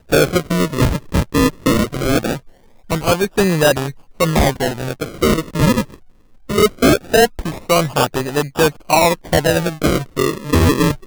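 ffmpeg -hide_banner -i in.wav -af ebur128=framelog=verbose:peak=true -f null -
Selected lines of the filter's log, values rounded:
Integrated loudness:
  I:         -16.5 LUFS
  Threshold: -26.9 LUFS
Loudness range:
  LRA:         2.3 LU
  Threshold: -37.0 LUFS
  LRA low:   -18.0 LUFS
  LRA high:  -15.7 LUFS
True peak:
  Peak:       -5.0 dBFS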